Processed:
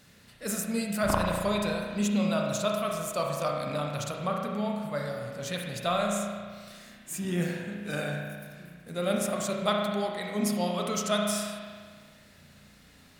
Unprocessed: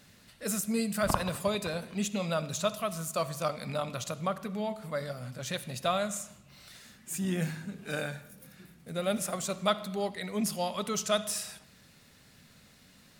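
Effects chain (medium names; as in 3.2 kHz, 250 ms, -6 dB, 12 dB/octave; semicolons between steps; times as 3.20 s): spring tank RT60 1.7 s, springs 34 ms, chirp 45 ms, DRR 0 dB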